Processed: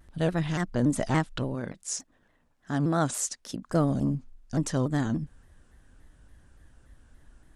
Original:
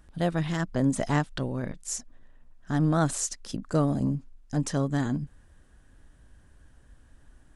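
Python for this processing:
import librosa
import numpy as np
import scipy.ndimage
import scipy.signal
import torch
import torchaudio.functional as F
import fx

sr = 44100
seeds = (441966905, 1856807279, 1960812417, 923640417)

y = fx.highpass(x, sr, hz=170.0, slope=6, at=(1.55, 3.7))
y = fx.vibrato_shape(y, sr, shape='saw_down', rate_hz=3.5, depth_cents=160.0)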